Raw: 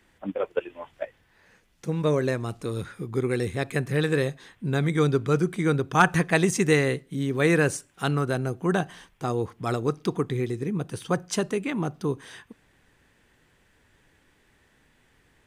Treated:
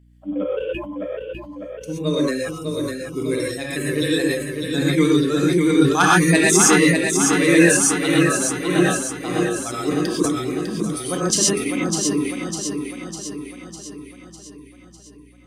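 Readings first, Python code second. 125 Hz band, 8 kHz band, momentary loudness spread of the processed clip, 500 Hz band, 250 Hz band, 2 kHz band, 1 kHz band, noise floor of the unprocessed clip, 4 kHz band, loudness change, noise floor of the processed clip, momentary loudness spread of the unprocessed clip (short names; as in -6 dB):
+1.5 dB, +18.0 dB, 17 LU, +5.0 dB, +9.0 dB, +7.5 dB, +5.0 dB, -64 dBFS, +12.0 dB, +7.0 dB, -45 dBFS, 13 LU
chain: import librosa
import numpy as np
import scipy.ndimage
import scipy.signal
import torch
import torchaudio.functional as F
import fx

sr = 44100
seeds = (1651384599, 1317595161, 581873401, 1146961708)

p1 = fx.bin_expand(x, sr, power=1.5)
p2 = scipy.signal.sosfilt(scipy.signal.bessel(2, 200.0, 'highpass', norm='mag', fs=sr, output='sos'), p1)
p3 = fx.dereverb_blind(p2, sr, rt60_s=1.6)
p4 = fx.peak_eq(p3, sr, hz=300.0, db=13.0, octaves=0.28)
p5 = fx.fold_sine(p4, sr, drive_db=3, ceiling_db=-6.5)
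p6 = p4 + (p5 * librosa.db_to_amplitude(-5.0))
p7 = fx.peak_eq(p6, sr, hz=8800.0, db=13.5, octaves=2.6)
p8 = p7 + fx.echo_feedback(p7, sr, ms=602, feedback_pct=56, wet_db=-5.5, dry=0)
p9 = fx.rev_gated(p8, sr, seeds[0], gate_ms=150, shape='rising', drr_db=-4.0)
p10 = fx.add_hum(p9, sr, base_hz=60, snr_db=32)
p11 = fx.sustainer(p10, sr, db_per_s=58.0)
y = p11 * librosa.db_to_amplitude(-6.5)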